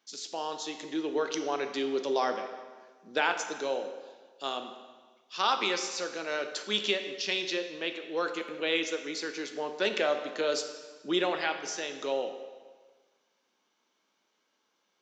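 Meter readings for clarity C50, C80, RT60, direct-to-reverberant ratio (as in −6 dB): 8.5 dB, 9.5 dB, 1.5 s, 6.5 dB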